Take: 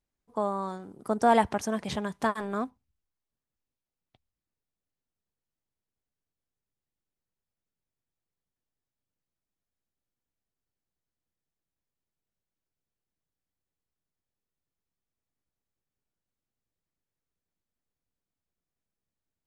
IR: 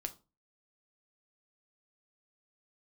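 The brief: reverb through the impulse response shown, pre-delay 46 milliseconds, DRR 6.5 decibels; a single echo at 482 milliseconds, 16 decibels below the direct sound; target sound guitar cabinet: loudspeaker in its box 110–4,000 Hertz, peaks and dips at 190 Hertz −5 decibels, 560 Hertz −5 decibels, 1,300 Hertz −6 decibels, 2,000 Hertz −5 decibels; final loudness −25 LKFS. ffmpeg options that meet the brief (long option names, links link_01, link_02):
-filter_complex "[0:a]aecho=1:1:482:0.158,asplit=2[link_01][link_02];[1:a]atrim=start_sample=2205,adelay=46[link_03];[link_02][link_03]afir=irnorm=-1:irlink=0,volume=-5dB[link_04];[link_01][link_04]amix=inputs=2:normalize=0,highpass=110,equalizer=frequency=190:width_type=q:width=4:gain=-5,equalizer=frequency=560:width_type=q:width=4:gain=-5,equalizer=frequency=1300:width_type=q:width=4:gain=-6,equalizer=frequency=2000:width_type=q:width=4:gain=-5,lowpass=frequency=4000:width=0.5412,lowpass=frequency=4000:width=1.3066,volume=5.5dB"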